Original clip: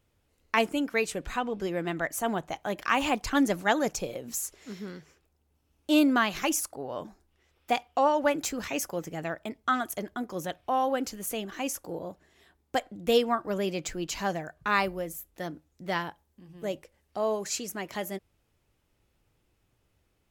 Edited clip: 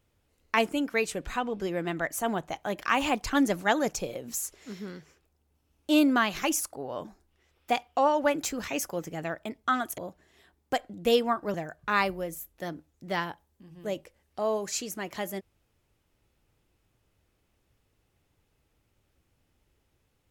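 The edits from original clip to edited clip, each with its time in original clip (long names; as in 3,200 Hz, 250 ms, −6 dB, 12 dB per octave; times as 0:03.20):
0:09.98–0:12.00: remove
0:13.56–0:14.32: remove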